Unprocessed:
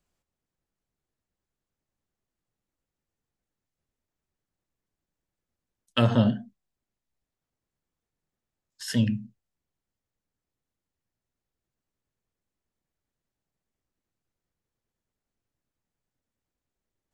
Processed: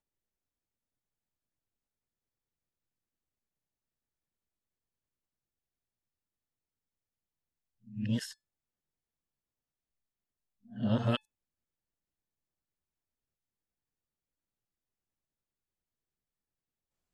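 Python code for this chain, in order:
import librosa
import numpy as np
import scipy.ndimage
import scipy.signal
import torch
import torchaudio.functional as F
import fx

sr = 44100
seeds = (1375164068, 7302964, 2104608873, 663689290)

y = x[::-1].copy()
y = fx.comb_fb(y, sr, f0_hz=870.0, decay_s=0.19, harmonics='all', damping=0.0, mix_pct=40)
y = y * 10.0 ** (-4.0 / 20.0)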